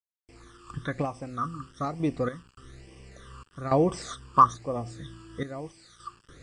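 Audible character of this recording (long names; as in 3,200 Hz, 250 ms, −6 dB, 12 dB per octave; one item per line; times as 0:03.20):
sample-and-hold tremolo, depth 90%
a quantiser's noise floor 10 bits, dither none
phaser sweep stages 12, 1.1 Hz, lowest notch 650–1,300 Hz
MP2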